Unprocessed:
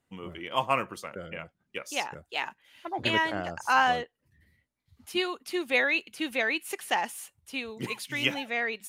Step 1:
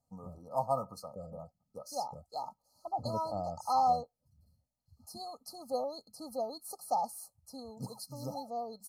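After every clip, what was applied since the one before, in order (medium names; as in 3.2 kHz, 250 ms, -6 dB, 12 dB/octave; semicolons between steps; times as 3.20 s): dynamic bell 7 kHz, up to -7 dB, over -56 dBFS, Q 2.6; FFT band-reject 1.3–4 kHz; comb 1.4 ms, depth 91%; trim -6 dB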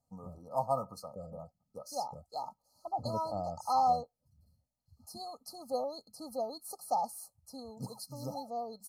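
no audible change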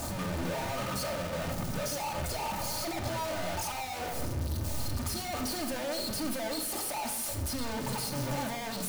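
one-bit comparator; simulated room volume 2800 m³, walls furnished, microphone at 2.6 m; trim +1 dB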